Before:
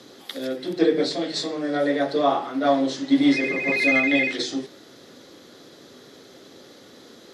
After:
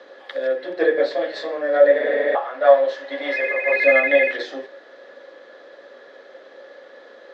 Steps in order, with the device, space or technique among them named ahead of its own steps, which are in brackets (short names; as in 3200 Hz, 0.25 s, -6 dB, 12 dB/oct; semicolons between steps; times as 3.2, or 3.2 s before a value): 2.02–2.33 spectral repair 220–7700 Hz before; 2.35–3.73 HPF 480 Hz 12 dB/oct; tin-can telephone (BPF 630–2100 Hz; small resonant body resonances 550/1700 Hz, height 14 dB, ringing for 40 ms); gain +4 dB